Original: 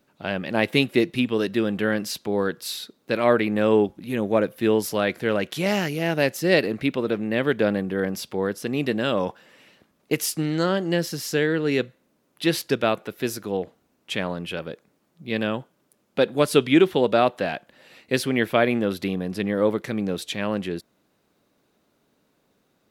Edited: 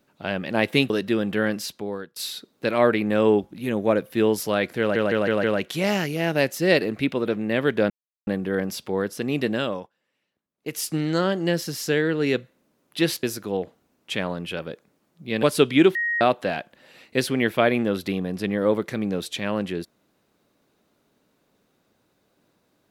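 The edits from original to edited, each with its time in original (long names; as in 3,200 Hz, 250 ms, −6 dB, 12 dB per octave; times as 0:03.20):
0:00.90–0:01.36: remove
0:02.00–0:02.62: fade out, to −22.5 dB
0:05.26: stutter 0.16 s, 5 plays
0:07.72: splice in silence 0.37 s
0:09.00–0:10.37: duck −23 dB, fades 0.35 s
0:12.68–0:13.23: remove
0:15.43–0:16.39: remove
0:16.91–0:17.17: beep over 1,880 Hz −21.5 dBFS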